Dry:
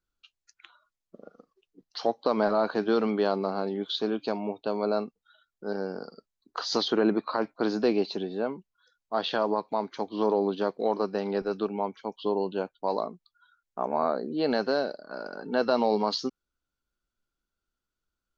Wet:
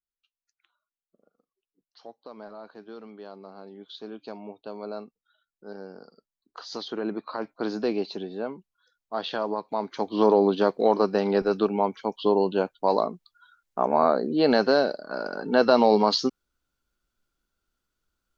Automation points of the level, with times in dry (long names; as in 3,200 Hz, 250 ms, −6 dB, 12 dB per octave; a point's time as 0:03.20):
0:03.15 −18 dB
0:04.39 −8.5 dB
0:06.79 −8.5 dB
0:07.65 −2 dB
0:09.60 −2 dB
0:10.19 +6 dB